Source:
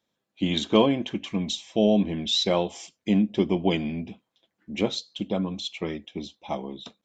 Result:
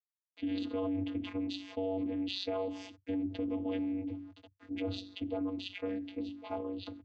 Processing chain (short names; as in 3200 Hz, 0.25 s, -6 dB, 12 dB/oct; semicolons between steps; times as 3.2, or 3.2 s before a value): notches 50/100/150/200/250/300/350 Hz; bit-crush 11-bit; notch comb 820 Hz; vocoder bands 16, square 95.1 Hz; limiter -22 dBFS, peak gain reduction 11.5 dB; LPF 3800 Hz 12 dB/oct; fast leveller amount 50%; gain -6.5 dB